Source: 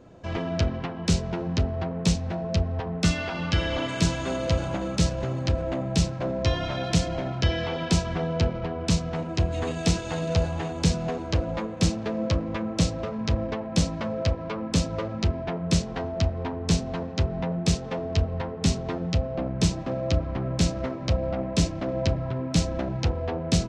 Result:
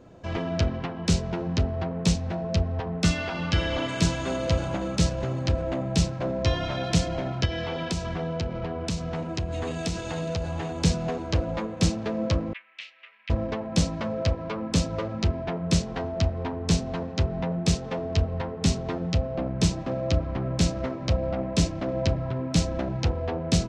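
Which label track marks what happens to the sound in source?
7.450000	10.740000	compression 3:1, threshold -26 dBFS
12.530000	13.300000	Butterworth band-pass 2.4 kHz, Q 2

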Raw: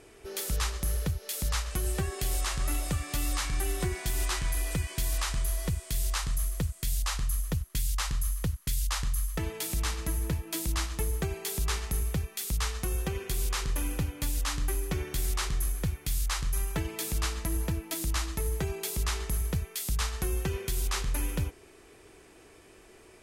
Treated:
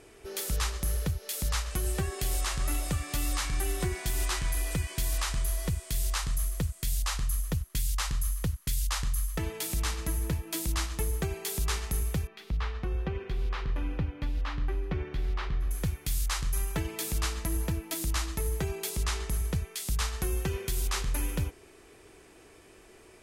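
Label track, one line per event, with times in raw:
12.270000	15.710000	distance through air 330 m
18.890000	19.890000	peaking EQ 14 kHz -9.5 dB 0.33 oct

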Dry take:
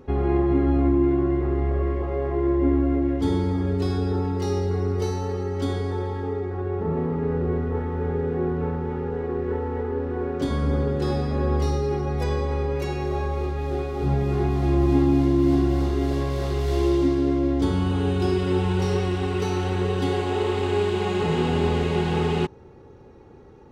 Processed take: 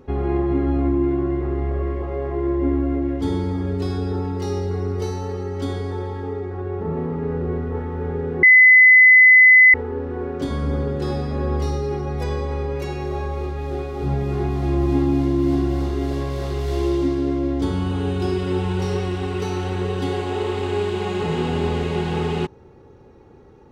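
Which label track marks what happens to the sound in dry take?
8.430000	9.740000	bleep 2.02 kHz -6.5 dBFS

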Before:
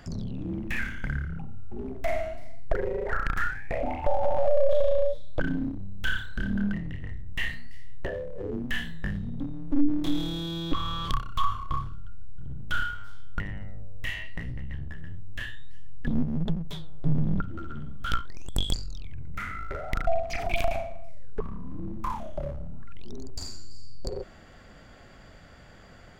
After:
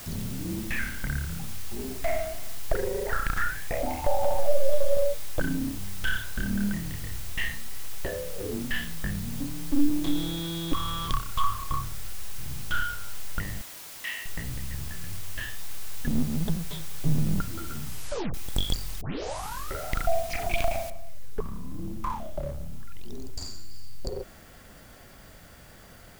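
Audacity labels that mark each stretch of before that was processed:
4.340000	4.970000	three-phase chorus
8.100000	9.420000	brick-wall FIR low-pass 5.6 kHz
13.610000	14.260000	high-pass 820 Hz 24 dB/octave
17.850000	17.850000	tape stop 0.49 s
19.010000	19.010000	tape start 0.73 s
20.900000	20.900000	noise floor step -43 dB -57 dB

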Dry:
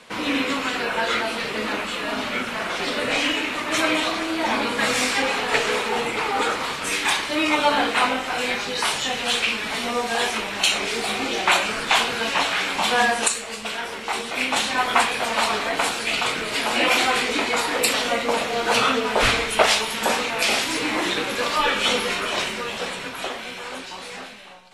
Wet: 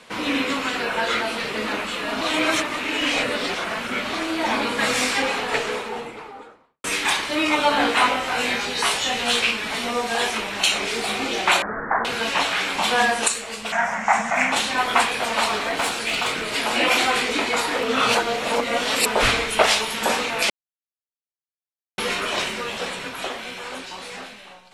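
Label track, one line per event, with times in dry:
2.210000	4.130000	reverse
5.140000	6.840000	studio fade out
7.780000	9.510000	doubling 17 ms -3 dB
11.620000	12.050000	steep low-pass 1.9 kHz 96 dB/octave
13.720000	14.520000	FFT filter 110 Hz 0 dB, 200 Hz +11 dB, 410 Hz -17 dB, 670 Hz +12 dB, 1.3 kHz +7 dB, 1.9 kHz +11 dB, 3 kHz -8 dB, 4.2 kHz -13 dB, 6.7 kHz +8 dB, 9.9 kHz -9 dB
15.490000	16.420000	overload inside the chain gain 17 dB
17.830000	19.060000	reverse
20.500000	21.980000	mute

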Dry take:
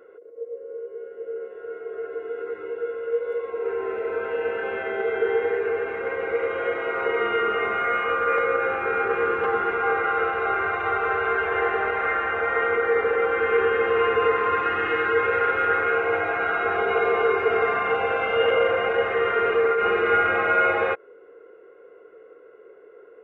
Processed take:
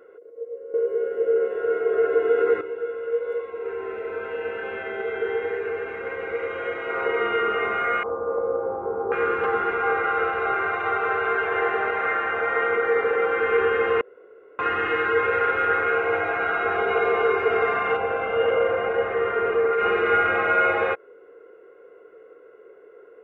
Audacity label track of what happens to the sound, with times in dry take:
0.740000	2.610000	gain +11.5 dB
3.430000	6.900000	peaking EQ 650 Hz -4 dB 2.6 oct
8.030000	9.120000	Chebyshev low-pass 1 kHz, order 4
10.520000	13.470000	high-pass 99 Hz
14.010000	14.590000	room tone
17.970000	19.730000	treble shelf 2.3 kHz -11 dB

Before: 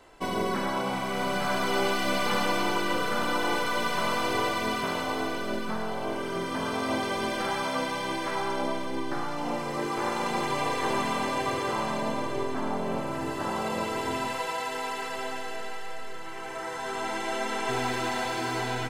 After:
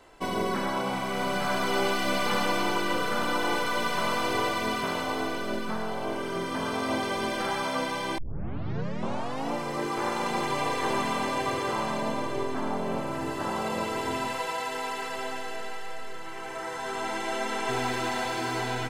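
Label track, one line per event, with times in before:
8.180000	8.180000	tape start 1.33 s

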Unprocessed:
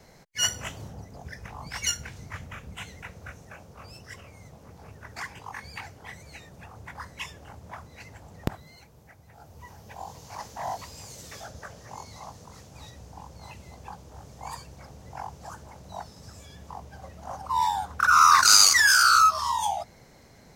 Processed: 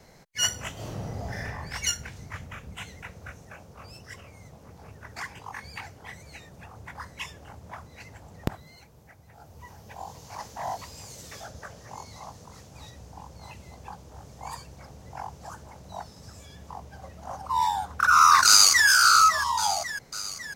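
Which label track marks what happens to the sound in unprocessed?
0.730000	1.450000	reverb throw, RT60 1.5 s, DRR -8 dB
18.470000	18.880000	echo throw 550 ms, feedback 60%, level -10 dB

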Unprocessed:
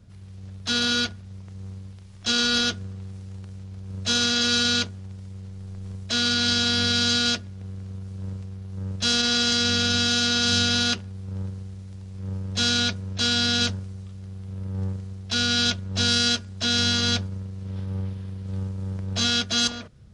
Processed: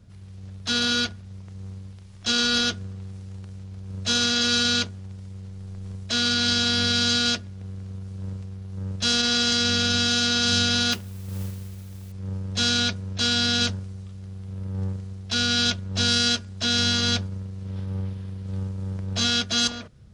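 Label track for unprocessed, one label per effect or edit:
10.910000	12.120000	modulation noise under the signal 17 dB

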